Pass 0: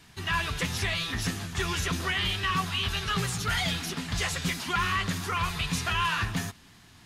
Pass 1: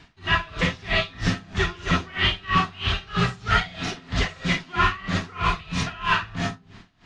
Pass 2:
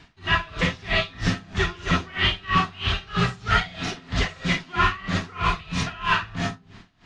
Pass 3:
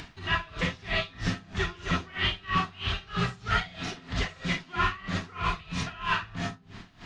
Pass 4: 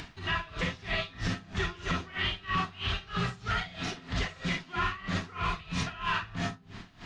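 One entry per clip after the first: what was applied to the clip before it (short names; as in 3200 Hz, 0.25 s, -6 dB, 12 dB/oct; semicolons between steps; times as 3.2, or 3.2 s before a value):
Gaussian blur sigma 1.7 samples; digital reverb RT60 0.43 s, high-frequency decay 0.35×, pre-delay 10 ms, DRR -1 dB; dB-linear tremolo 3.1 Hz, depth 23 dB; gain +7.5 dB
nothing audible
upward compressor, threshold -26 dBFS; gain -6 dB
limiter -20 dBFS, peak gain reduction 6.5 dB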